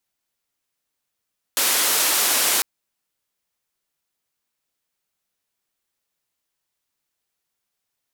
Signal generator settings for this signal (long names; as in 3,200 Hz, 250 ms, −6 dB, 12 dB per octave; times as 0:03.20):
band-limited noise 330–15,000 Hz, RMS −19.5 dBFS 1.05 s